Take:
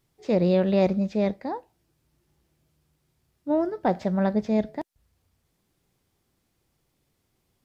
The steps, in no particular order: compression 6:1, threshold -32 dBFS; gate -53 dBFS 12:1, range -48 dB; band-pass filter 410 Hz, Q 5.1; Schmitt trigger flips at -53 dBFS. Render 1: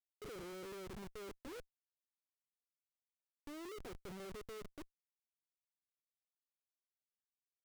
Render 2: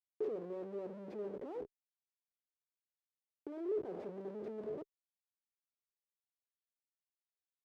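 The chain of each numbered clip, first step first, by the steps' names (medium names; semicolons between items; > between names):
compression > band-pass filter > gate > Schmitt trigger; gate > Schmitt trigger > compression > band-pass filter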